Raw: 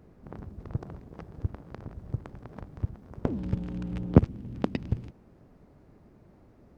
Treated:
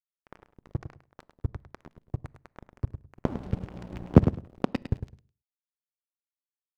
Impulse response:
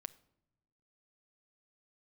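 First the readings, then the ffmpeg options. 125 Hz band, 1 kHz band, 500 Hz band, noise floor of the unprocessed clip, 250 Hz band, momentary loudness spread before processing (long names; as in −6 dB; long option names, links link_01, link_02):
+0.5 dB, +2.5 dB, +1.5 dB, −58 dBFS, +1.0 dB, 22 LU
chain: -filter_complex "[0:a]aeval=exprs='sgn(val(0))*max(abs(val(0))-0.0188,0)':channel_layout=same,aecho=1:1:104|208:0.316|0.0474,asplit=2[link_01][link_02];[1:a]atrim=start_sample=2205,afade=type=out:start_time=0.38:duration=0.01,atrim=end_sample=17199,asetrate=52920,aresample=44100[link_03];[link_02][link_03]afir=irnorm=-1:irlink=0,volume=1.5dB[link_04];[link_01][link_04]amix=inputs=2:normalize=0,volume=-2dB"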